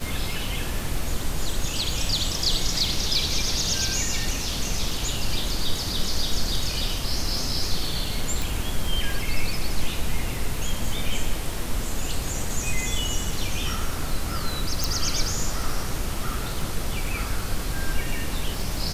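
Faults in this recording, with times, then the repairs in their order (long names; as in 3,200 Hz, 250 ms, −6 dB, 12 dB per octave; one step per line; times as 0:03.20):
surface crackle 36 per second −31 dBFS
0:08.42: click
0:14.84: click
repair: click removal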